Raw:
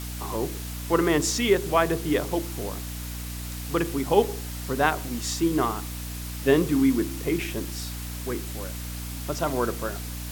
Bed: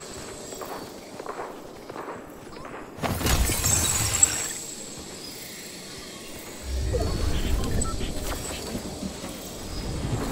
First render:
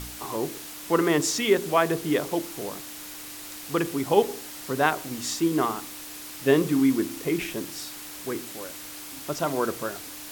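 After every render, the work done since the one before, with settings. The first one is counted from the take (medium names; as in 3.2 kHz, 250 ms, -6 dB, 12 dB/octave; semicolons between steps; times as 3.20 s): de-hum 60 Hz, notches 4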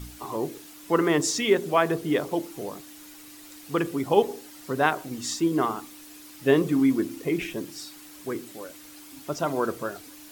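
noise reduction 9 dB, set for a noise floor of -40 dBFS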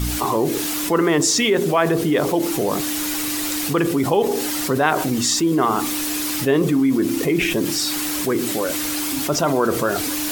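level flattener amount 70%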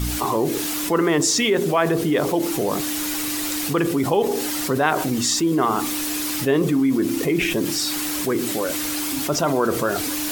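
trim -1.5 dB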